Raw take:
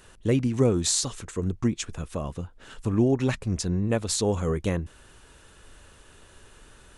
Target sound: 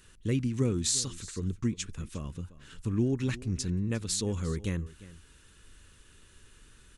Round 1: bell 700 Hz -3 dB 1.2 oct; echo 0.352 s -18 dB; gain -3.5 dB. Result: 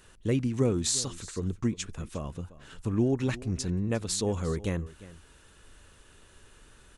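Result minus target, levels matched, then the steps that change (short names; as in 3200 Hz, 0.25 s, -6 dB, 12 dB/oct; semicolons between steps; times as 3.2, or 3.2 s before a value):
500 Hz band +3.5 dB
change: bell 700 Hz -14.5 dB 1.2 oct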